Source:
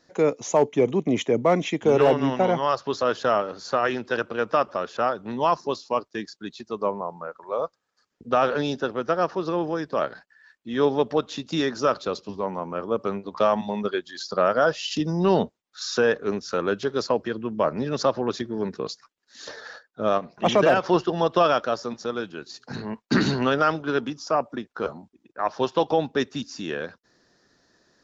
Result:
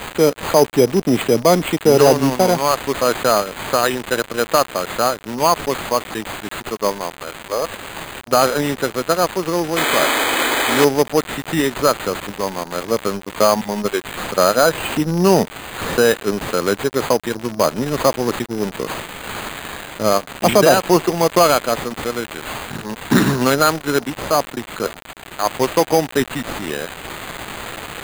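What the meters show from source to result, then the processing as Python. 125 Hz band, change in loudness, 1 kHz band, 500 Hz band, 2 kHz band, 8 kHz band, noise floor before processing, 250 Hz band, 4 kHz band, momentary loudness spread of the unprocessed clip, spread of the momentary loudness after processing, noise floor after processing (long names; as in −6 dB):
+7.5 dB, +6.5 dB, +6.5 dB, +6.0 dB, +8.5 dB, can't be measured, −72 dBFS, +6.5 dB, +10.0 dB, 13 LU, 13 LU, −38 dBFS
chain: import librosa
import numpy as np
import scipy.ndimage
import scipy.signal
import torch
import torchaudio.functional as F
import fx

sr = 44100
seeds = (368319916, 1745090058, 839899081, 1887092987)

y = x + 0.5 * 10.0 ** (-25.0 / 20.0) * np.diff(np.sign(x), prepend=np.sign(x[:1]))
y = fx.low_shelf(y, sr, hz=160.0, db=3.0)
y = np.sign(y) * np.maximum(np.abs(y) - 10.0 ** (-36.5 / 20.0), 0.0)
y = fx.spec_paint(y, sr, seeds[0], shape='noise', start_s=9.76, length_s=1.09, low_hz=240.0, high_hz=2600.0, level_db=-25.0)
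y = np.repeat(y[::8], 8)[:len(y)]
y = F.gain(torch.from_numpy(y), 7.0).numpy()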